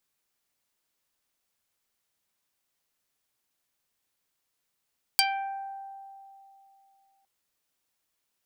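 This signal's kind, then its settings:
Karplus-Strong string G5, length 2.06 s, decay 2.93 s, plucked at 0.41, dark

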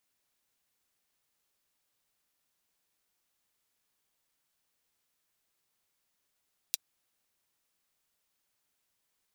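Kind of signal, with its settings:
closed synth hi-hat, high-pass 3,800 Hz, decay 0.03 s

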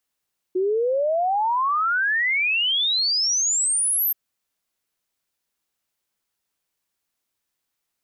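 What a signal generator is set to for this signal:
exponential sine sweep 360 Hz → 13,000 Hz 3.58 s −18.5 dBFS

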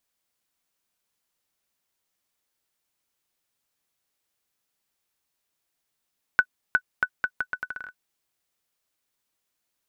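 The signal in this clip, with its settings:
bouncing ball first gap 0.36 s, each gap 0.77, 1,490 Hz, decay 64 ms −6.5 dBFS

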